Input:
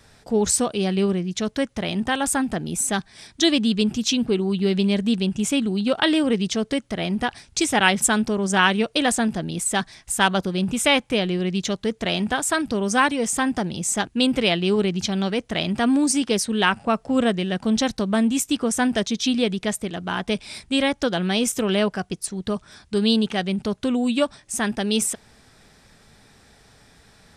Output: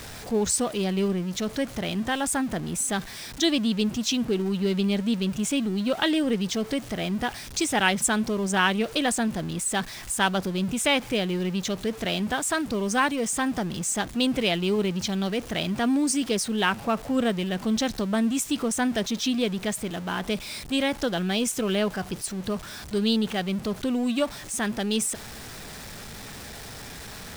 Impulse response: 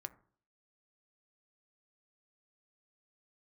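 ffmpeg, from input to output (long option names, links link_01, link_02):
-af "aeval=exprs='val(0)+0.5*0.0316*sgn(val(0))':channel_layout=same,volume=-5dB"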